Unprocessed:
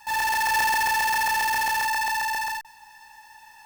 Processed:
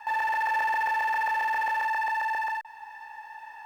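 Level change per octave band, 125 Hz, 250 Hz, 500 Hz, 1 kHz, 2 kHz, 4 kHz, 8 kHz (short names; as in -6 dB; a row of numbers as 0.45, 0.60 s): n/a, under -10 dB, -1.5 dB, -2.0 dB, -4.0 dB, -15.5 dB, under -20 dB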